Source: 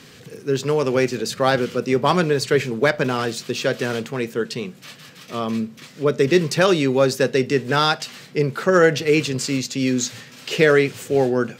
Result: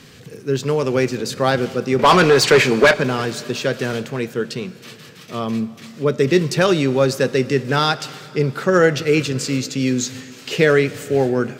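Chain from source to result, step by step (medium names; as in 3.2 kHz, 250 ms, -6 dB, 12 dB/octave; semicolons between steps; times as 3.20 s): bass shelf 110 Hz +8 dB; 1.99–2.94 s: overdrive pedal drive 22 dB, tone 4.8 kHz, clips at -3 dBFS; reverberation RT60 3.3 s, pre-delay 53 ms, DRR 17 dB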